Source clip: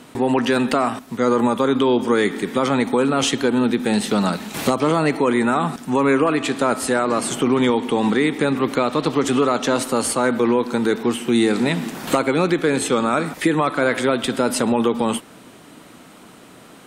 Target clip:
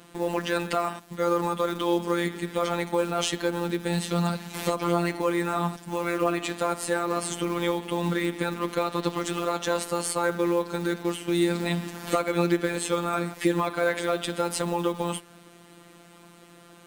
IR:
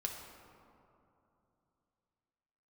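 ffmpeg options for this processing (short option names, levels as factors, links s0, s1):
-af "acrusher=bits=6:mode=log:mix=0:aa=0.000001,afftfilt=real='hypot(re,im)*cos(PI*b)':imag='0':win_size=1024:overlap=0.75,volume=0.668"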